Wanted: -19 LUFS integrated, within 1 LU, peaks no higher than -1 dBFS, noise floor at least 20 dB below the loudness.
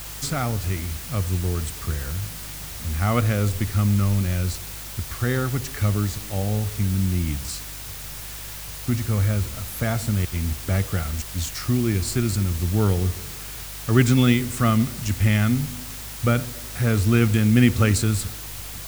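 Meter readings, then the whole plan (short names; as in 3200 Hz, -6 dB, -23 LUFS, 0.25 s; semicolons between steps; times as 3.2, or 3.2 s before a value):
hum 50 Hz; harmonics up to 150 Hz; hum level -39 dBFS; noise floor -35 dBFS; noise floor target -44 dBFS; loudness -23.5 LUFS; peak -3.5 dBFS; loudness target -19.0 LUFS
-> de-hum 50 Hz, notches 3; denoiser 9 dB, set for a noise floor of -35 dBFS; gain +4.5 dB; limiter -1 dBFS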